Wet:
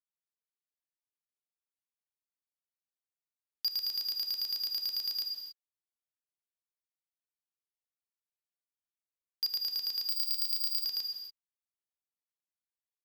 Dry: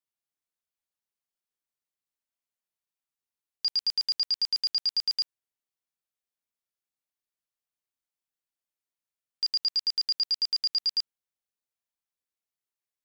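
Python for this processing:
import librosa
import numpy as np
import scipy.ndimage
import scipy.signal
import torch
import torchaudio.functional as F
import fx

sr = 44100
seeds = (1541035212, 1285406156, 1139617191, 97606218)

y = fx.cheby_harmonics(x, sr, harmonics=(3, 5), levels_db=(-12, -36), full_scale_db=-20.5)
y = fx.rev_gated(y, sr, seeds[0], gate_ms=310, shape='flat', drr_db=6.0)
y = fx.resample_bad(y, sr, factor=2, down='filtered', up='zero_stuff', at=(10.09, 10.85))
y = F.gain(torch.from_numpy(y), -3.5).numpy()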